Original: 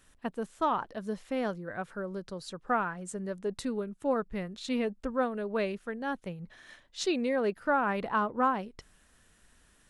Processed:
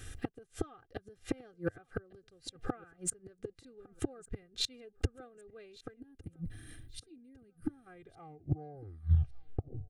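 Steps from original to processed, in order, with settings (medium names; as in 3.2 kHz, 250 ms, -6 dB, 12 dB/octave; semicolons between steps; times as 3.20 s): tape stop on the ending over 2.17 s; inverted gate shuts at -30 dBFS, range -35 dB; Butterworth band-stop 970 Hz, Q 2.3; time-frequency box 5.96–7.87 s, 340–8200 Hz -17 dB; in parallel at -4 dB: saturation -40 dBFS, distortion -9 dB; on the sum: peaking EQ 99 Hz +13.5 dB 1.4 oct; comb 2.5 ms, depth 69%; feedback delay 1156 ms, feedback 35%, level -23.5 dB; trim +6.5 dB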